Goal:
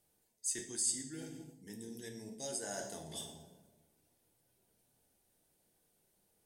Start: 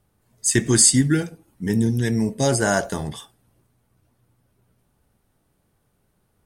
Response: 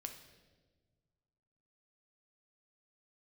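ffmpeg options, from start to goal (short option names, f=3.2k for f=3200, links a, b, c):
-filter_complex "[0:a]equalizer=f=1.2k:t=o:w=0.8:g=-9[a];[1:a]atrim=start_sample=2205,asetrate=66150,aresample=44100[b];[a][b]afir=irnorm=-1:irlink=0,areverse,acompressor=threshold=-41dB:ratio=5,areverse,bass=f=250:g=-13,treble=f=4k:g=7,volume=1dB"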